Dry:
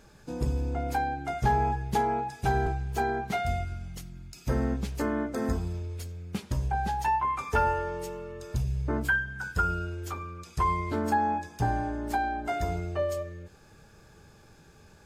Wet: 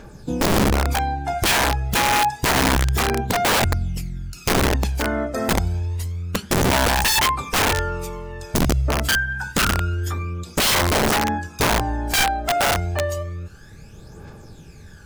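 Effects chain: phaser 0.28 Hz, delay 1.6 ms, feedback 62%; integer overflow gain 20 dB; trim +7 dB

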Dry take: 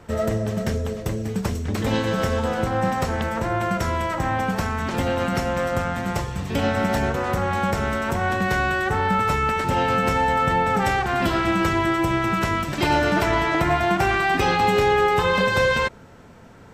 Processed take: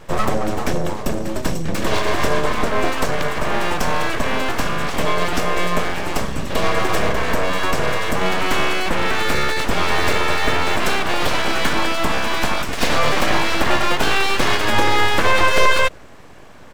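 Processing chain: comb 1.8 ms, depth 89%; full-wave rectifier; trim +4 dB

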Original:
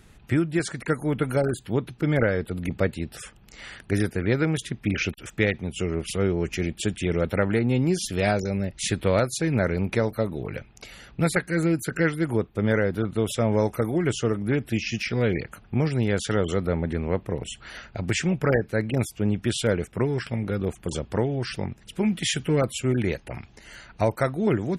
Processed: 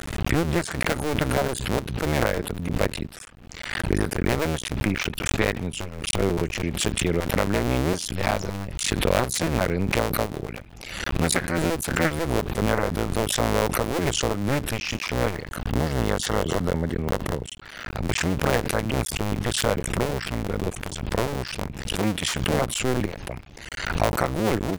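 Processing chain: cycle switcher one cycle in 2, muted; 15.36–17.48 s: band-stop 2.4 kHz, Q 7.5; swell ahead of each attack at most 49 dB/s; trim +1.5 dB

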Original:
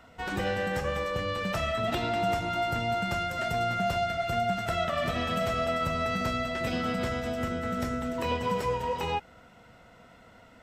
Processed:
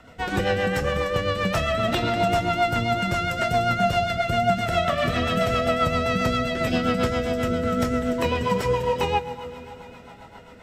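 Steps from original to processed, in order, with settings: plate-style reverb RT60 4.9 s, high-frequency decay 0.95×, DRR 11 dB; rotary cabinet horn 7.5 Hz; trim +8.5 dB

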